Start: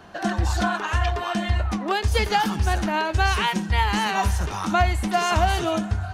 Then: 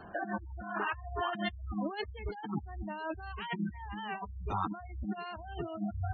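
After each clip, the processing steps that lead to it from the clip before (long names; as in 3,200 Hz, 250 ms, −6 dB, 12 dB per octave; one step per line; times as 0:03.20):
brickwall limiter −13 dBFS, peak gain reduction 5 dB
compressor whose output falls as the input rises −28 dBFS, ratio −0.5
gate on every frequency bin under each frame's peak −15 dB strong
level −8 dB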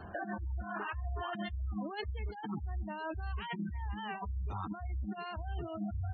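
parametric band 72 Hz +11 dB 1.2 octaves
brickwall limiter −27.5 dBFS, peak gain reduction 8 dB
downward compressor 3 to 1, threshold −35 dBFS, peak gain reduction 4.5 dB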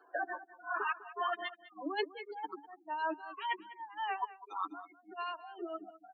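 spectral dynamics exaggerated over time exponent 2
Chebyshev high-pass with heavy ripple 280 Hz, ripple 6 dB
single-tap delay 201 ms −16.5 dB
level +10.5 dB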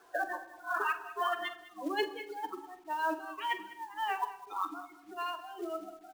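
log-companded quantiser 6 bits
double-tracking delay 45 ms −12 dB
on a send at −13 dB: convolution reverb RT60 0.95 s, pre-delay 19 ms
on the sum: level +2.5 dB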